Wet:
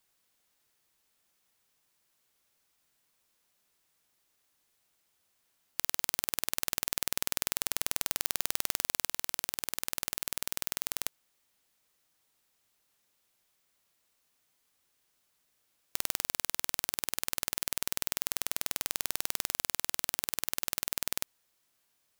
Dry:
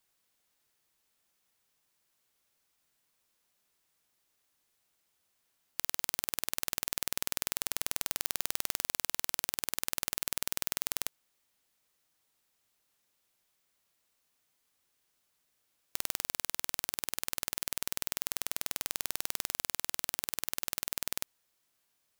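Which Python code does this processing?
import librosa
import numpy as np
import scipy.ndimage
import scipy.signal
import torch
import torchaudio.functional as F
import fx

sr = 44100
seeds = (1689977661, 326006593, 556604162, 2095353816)

y = fx.over_compress(x, sr, threshold_db=-37.0, ratio=-1.0, at=(9.05, 11.05))
y = F.gain(torch.from_numpy(y), 2.0).numpy()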